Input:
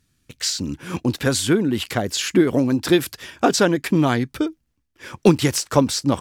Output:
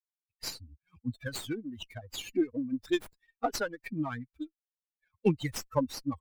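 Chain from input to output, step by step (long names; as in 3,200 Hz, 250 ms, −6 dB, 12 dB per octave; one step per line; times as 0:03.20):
spectral dynamics exaggerated over time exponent 3
windowed peak hold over 3 samples
level −8 dB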